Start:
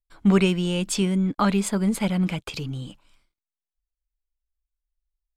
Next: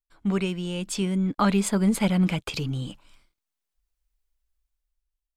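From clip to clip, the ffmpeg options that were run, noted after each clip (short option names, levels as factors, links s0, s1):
-af "dynaudnorm=f=460:g=5:m=6.31,volume=0.422"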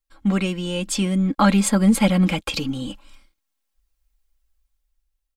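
-af "aecho=1:1:3.7:0.65,volume=1.68"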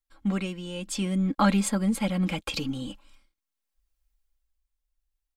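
-af "tremolo=f=0.75:d=0.44,volume=0.562"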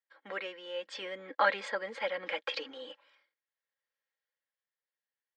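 -af "highpass=f=500:w=0.5412,highpass=f=500:w=1.3066,equalizer=f=500:t=q:w=4:g=6,equalizer=f=720:t=q:w=4:g=-6,equalizer=f=1200:t=q:w=4:g=-5,equalizer=f=1800:t=q:w=4:g=10,equalizer=f=2600:t=q:w=4:g=-6,equalizer=f=3900:t=q:w=4:g=-5,lowpass=f=4100:w=0.5412,lowpass=f=4100:w=1.3066"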